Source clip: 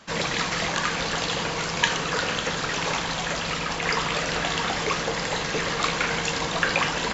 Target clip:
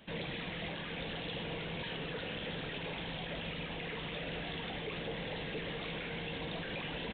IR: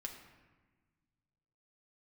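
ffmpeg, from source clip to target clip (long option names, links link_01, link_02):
-af "aresample=8000,asoftclip=type=tanh:threshold=-20dB,aresample=44100,alimiter=level_in=2dB:limit=-24dB:level=0:latency=1,volume=-2dB,equalizer=frequency=1200:width_type=o:width=1.1:gain=-13.5,volume=-3.5dB"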